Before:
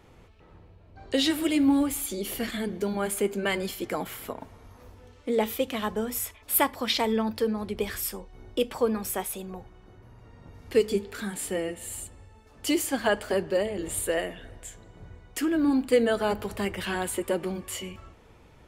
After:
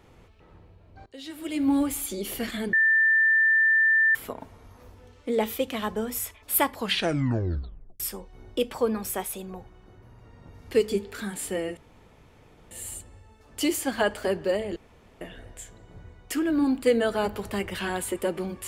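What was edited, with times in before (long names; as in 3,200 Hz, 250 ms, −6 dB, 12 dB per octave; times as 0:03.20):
0:01.06–0:01.75: fade in quadratic, from −21 dB
0:02.73–0:04.15: beep over 1,780 Hz −17 dBFS
0:06.73: tape stop 1.27 s
0:11.77: splice in room tone 0.94 s
0:13.82–0:14.27: fill with room tone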